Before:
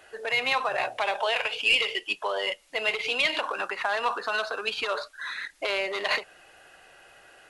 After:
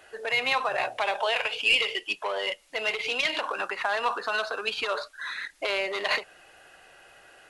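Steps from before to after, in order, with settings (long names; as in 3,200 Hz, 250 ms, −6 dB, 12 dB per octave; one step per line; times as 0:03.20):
0:01.96–0:03.48: saturating transformer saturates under 1,600 Hz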